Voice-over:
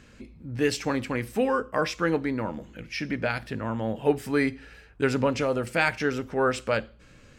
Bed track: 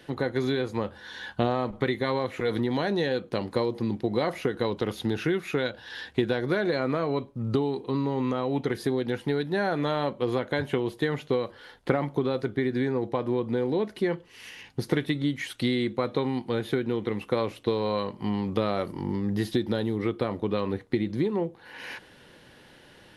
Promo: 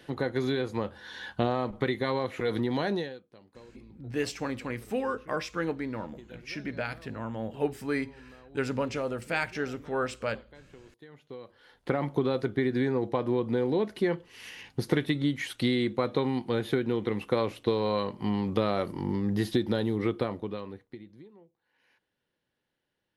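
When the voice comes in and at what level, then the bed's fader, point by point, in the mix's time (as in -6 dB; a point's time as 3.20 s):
3.55 s, -6.0 dB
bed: 2.95 s -2 dB
3.27 s -25.5 dB
11.00 s -25.5 dB
12.07 s -0.5 dB
20.18 s -0.5 dB
21.47 s -30 dB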